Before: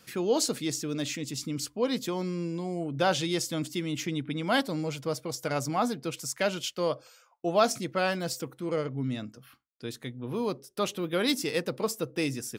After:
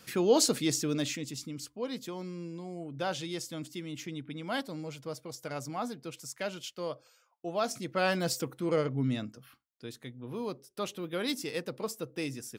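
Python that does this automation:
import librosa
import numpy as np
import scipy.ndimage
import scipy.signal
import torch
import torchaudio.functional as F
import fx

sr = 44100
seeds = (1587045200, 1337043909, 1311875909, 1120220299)

y = fx.gain(x, sr, db=fx.line((0.89, 2.0), (1.58, -8.0), (7.61, -8.0), (8.18, 1.5), (9.08, 1.5), (9.9, -6.0)))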